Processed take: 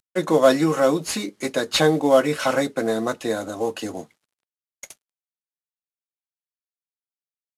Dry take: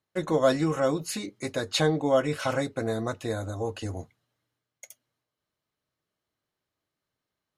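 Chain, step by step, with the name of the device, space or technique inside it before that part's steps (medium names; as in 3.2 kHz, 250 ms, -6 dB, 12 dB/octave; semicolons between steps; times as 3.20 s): early wireless headset (high-pass 170 Hz 24 dB/octave; CVSD coder 64 kbps); trim +7 dB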